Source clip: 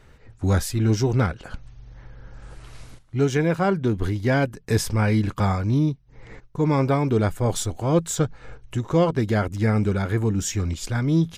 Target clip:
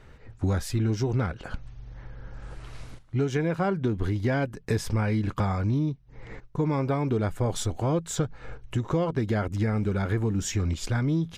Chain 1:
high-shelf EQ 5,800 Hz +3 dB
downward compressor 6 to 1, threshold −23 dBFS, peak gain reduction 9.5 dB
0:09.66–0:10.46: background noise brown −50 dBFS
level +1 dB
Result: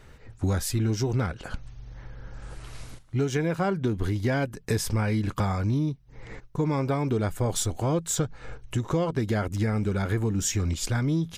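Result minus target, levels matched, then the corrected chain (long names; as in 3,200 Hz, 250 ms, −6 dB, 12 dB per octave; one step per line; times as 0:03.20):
8,000 Hz band +5.5 dB
high-shelf EQ 5,800 Hz −8 dB
downward compressor 6 to 1, threshold −23 dBFS, peak gain reduction 9.5 dB
0:09.66–0:10.46: background noise brown −50 dBFS
level +1 dB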